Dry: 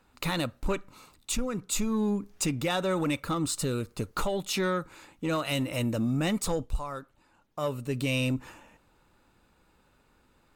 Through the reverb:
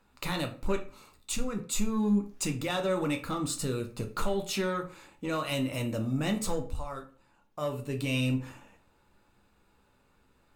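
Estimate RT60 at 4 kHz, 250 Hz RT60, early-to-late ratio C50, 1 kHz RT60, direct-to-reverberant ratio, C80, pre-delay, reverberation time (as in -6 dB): 0.30 s, 0.45 s, 12.0 dB, 0.40 s, 4.0 dB, 17.0 dB, 8 ms, 0.40 s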